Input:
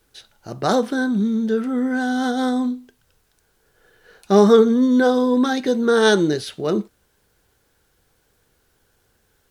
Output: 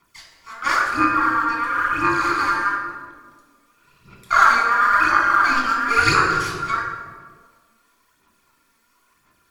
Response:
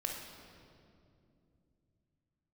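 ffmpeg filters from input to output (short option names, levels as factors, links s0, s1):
-filter_complex "[0:a]afreqshift=-450,acrossover=split=990[s0][s1];[s0]aeval=exprs='max(val(0),0)':c=same[s2];[s2][s1]amix=inputs=2:normalize=0,aeval=exprs='val(0)*sin(2*PI*1400*n/s)':c=same,aphaser=in_gain=1:out_gain=1:delay=4.5:decay=0.76:speed=0.97:type=sinusoidal[s3];[1:a]atrim=start_sample=2205,asetrate=83790,aresample=44100[s4];[s3][s4]afir=irnorm=-1:irlink=0,volume=1.78"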